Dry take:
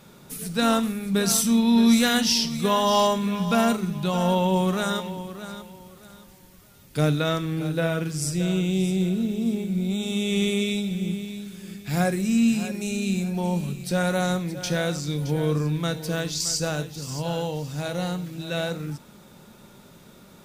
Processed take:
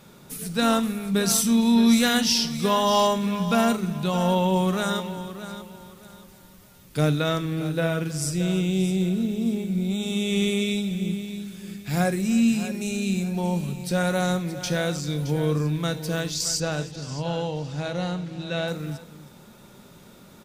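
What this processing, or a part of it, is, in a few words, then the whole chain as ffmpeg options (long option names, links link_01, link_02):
ducked delay: -filter_complex "[0:a]asettb=1/sr,asplit=3[link_01][link_02][link_03];[link_01]atrim=end=16.604[link_04];[link_02]atrim=start=16.6:end=18.68,asetpts=PTS-STARTPTS,afade=type=in:duration=0.004:curve=qsin,afade=type=out:start_time=2.076:duration=0.004:curve=qsin,lowpass=5600[link_05];[link_03]atrim=start=18.676[link_06];[link_04][link_05]acrossfade=duration=0.004:curve1=hsin:curve2=qsin[link_07];[link_07][link_06]acrossfade=duration=0.004:curve1=qsin:curve2=hsin,asplit=3[link_08][link_09][link_10];[link_09]adelay=315,volume=-9dB[link_11];[link_10]apad=whole_len=915600[link_12];[link_11][link_12]sidechaincompress=threshold=-36dB:ratio=3:attack=16:release=1210[link_13];[link_08][link_13]amix=inputs=2:normalize=0"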